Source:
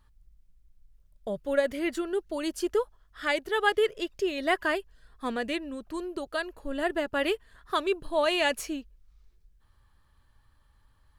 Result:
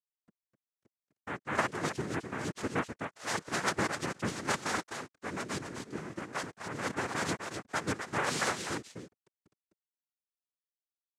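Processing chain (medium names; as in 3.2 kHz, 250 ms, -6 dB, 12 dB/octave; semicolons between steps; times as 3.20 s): bit crusher 8-bit; delay 255 ms -6.5 dB; noise-vocoded speech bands 3; trim -6.5 dB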